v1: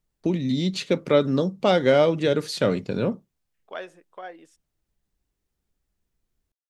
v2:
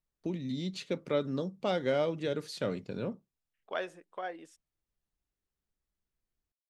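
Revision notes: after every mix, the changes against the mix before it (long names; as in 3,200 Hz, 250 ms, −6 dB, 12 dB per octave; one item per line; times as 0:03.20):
first voice −11.5 dB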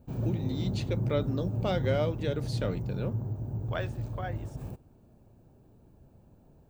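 background: unmuted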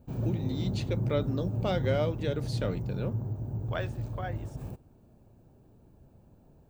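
nothing changed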